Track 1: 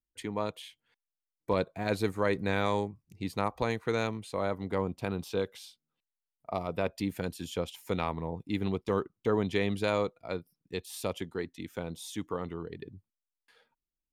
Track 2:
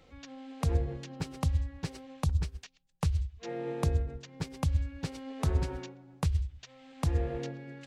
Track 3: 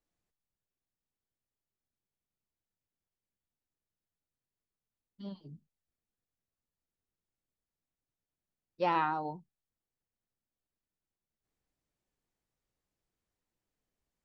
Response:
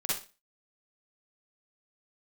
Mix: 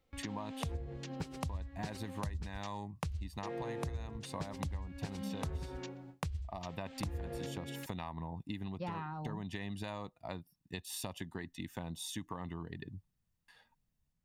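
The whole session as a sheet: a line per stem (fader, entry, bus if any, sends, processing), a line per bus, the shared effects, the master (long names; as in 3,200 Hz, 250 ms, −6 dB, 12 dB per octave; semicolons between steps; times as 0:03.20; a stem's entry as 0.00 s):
−1.0 dB, 0.00 s, no send, downward compressor 4 to 1, threshold −32 dBFS, peak gain reduction 8.5 dB; comb filter 1.1 ms, depth 67%
+3.0 dB, 0.00 s, no send, noise gate with hold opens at −45 dBFS
−4.0 dB, 0.00 s, no send, low shelf with overshoot 240 Hz +12.5 dB, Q 1.5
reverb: not used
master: downward compressor 6 to 1, threshold −37 dBFS, peak gain reduction 17.5 dB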